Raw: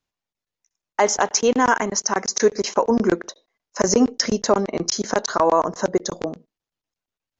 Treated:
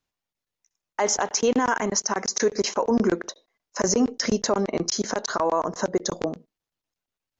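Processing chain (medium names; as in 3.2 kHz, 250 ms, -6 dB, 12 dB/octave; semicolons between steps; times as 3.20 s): 4.61–5.96 s: compression 2:1, threshold -20 dBFS, peak gain reduction 5 dB; peak limiter -12.5 dBFS, peak gain reduction 7.5 dB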